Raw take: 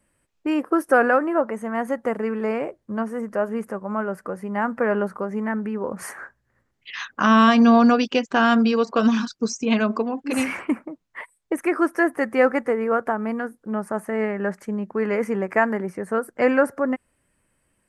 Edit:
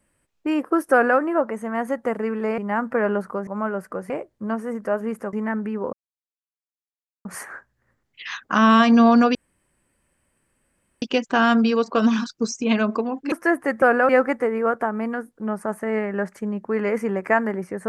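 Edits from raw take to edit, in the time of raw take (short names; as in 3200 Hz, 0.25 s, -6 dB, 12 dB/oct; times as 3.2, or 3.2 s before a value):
0.92–1.19 copy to 12.35
2.58–3.81 swap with 4.44–5.33
5.93 insert silence 1.32 s
8.03 insert room tone 1.67 s
10.33–11.85 cut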